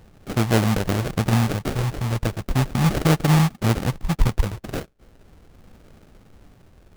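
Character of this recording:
phaser sweep stages 2, 0.38 Hz, lowest notch 270–1,100 Hz
aliases and images of a low sample rate 1,000 Hz, jitter 20%

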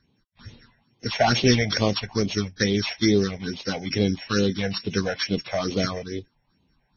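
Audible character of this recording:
a buzz of ramps at a fixed pitch in blocks of 8 samples
phaser sweep stages 6, 2.3 Hz, lowest notch 300–1,600 Hz
Ogg Vorbis

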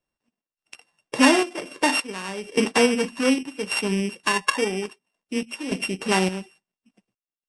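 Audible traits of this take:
a buzz of ramps at a fixed pitch in blocks of 16 samples
sample-and-hold tremolo, depth 85%
MP3

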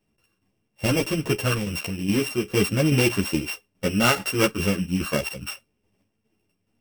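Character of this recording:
a buzz of ramps at a fixed pitch in blocks of 16 samples
tremolo saw down 2.4 Hz, depth 55%
a shimmering, thickened sound

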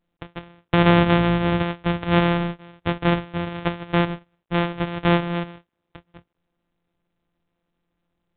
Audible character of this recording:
a buzz of ramps at a fixed pitch in blocks of 256 samples
mu-law

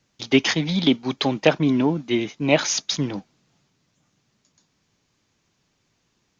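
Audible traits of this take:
background noise floor −70 dBFS
spectral slope −4.5 dB per octave

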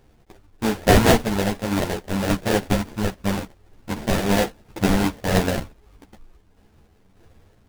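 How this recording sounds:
sample-and-hold tremolo
aliases and images of a low sample rate 1,200 Hz, jitter 20%
a shimmering, thickened sound

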